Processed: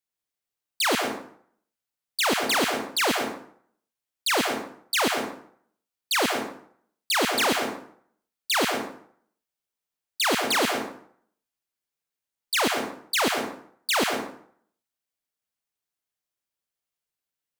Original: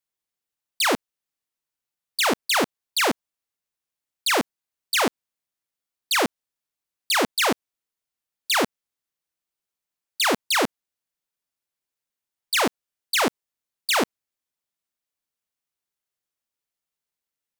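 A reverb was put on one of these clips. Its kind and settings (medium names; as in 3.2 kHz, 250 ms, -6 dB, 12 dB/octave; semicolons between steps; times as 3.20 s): plate-style reverb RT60 0.61 s, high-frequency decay 0.7×, pre-delay 95 ms, DRR 3 dB; trim -2.5 dB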